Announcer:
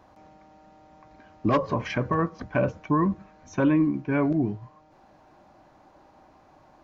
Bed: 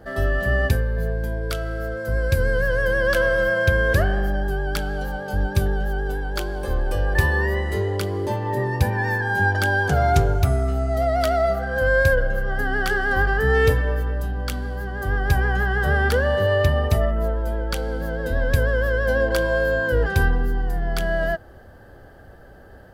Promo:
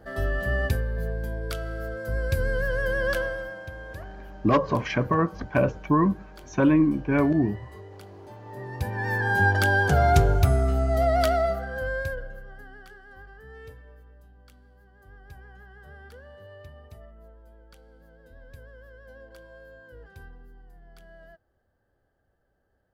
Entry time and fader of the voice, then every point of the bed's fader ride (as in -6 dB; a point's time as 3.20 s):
3.00 s, +2.0 dB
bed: 3.11 s -5.5 dB
3.65 s -21 dB
8.31 s -21 dB
9.26 s -1 dB
11.23 s -1 dB
13.00 s -27.5 dB